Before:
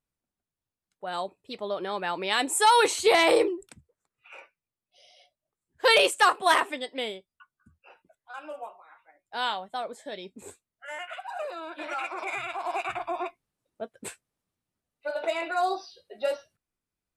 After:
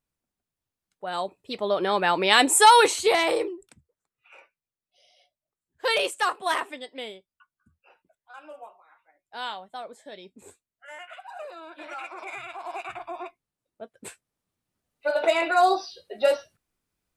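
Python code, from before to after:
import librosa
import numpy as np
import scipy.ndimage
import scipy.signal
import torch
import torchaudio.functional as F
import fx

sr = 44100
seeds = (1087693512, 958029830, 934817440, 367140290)

y = fx.gain(x, sr, db=fx.line((1.13, 2.0), (1.89, 8.0), (2.5, 8.0), (3.38, -4.5), (13.82, -4.5), (15.11, 7.0)))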